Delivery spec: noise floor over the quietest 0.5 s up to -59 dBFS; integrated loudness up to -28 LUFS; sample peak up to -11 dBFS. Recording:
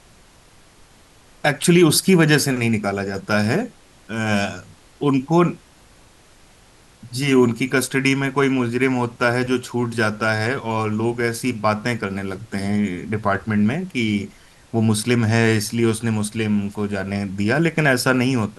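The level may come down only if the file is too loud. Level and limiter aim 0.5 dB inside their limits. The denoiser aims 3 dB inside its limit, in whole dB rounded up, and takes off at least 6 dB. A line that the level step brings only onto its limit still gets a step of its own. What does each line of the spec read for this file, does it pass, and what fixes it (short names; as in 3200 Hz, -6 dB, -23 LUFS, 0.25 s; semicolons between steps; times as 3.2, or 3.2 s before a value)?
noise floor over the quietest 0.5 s -50 dBFS: fail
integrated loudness -20.0 LUFS: fail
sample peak -3.5 dBFS: fail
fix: denoiser 6 dB, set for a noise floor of -50 dBFS; gain -8.5 dB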